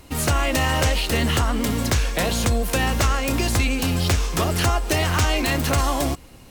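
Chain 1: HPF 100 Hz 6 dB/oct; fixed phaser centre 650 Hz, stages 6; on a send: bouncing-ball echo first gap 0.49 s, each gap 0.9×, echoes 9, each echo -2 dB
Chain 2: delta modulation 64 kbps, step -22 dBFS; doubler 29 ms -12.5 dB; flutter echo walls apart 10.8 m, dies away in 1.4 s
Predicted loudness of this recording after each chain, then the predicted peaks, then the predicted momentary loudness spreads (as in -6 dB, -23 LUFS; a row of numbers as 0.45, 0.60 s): -22.0, -17.5 LUFS; -8.0, -5.0 dBFS; 2, 2 LU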